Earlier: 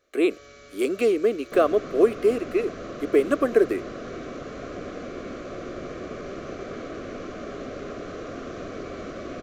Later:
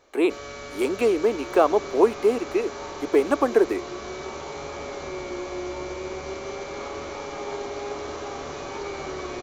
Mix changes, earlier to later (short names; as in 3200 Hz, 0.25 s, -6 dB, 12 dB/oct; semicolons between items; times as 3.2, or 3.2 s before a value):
first sound +10.0 dB; second sound -9.0 dB; master: remove Butterworth band-stop 890 Hz, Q 2.1